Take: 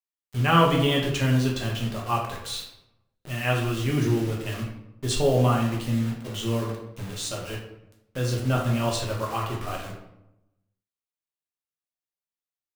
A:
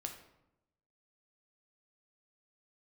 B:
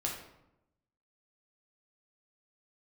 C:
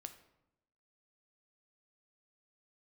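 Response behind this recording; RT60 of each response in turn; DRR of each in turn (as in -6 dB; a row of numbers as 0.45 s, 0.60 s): B; 0.85 s, 0.85 s, 0.90 s; 3.5 dB, -2.0 dB, 7.5 dB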